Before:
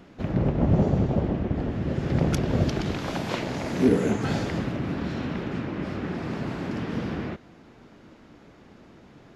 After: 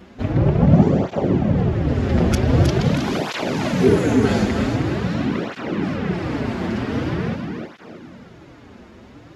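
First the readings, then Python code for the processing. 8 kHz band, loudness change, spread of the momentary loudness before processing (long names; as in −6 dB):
+7.0 dB, +7.0 dB, 9 LU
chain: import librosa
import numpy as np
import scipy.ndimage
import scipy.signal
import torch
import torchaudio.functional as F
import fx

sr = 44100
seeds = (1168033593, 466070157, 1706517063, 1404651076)

p1 = x + fx.echo_feedback(x, sr, ms=314, feedback_pct=42, wet_db=-6.0, dry=0)
p2 = fx.flanger_cancel(p1, sr, hz=0.45, depth_ms=7.3)
y = p2 * librosa.db_to_amplitude(9.0)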